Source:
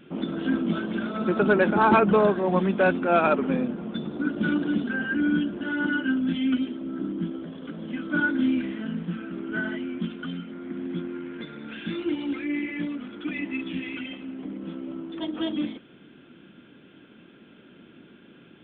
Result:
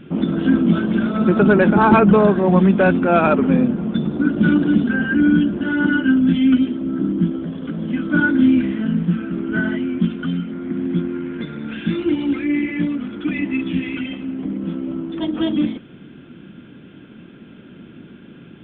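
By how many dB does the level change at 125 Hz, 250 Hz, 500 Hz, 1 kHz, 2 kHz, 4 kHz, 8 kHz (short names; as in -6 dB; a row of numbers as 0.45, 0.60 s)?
+12.5 dB, +10.0 dB, +6.0 dB, +5.0 dB, +5.5 dB, +4.5 dB, n/a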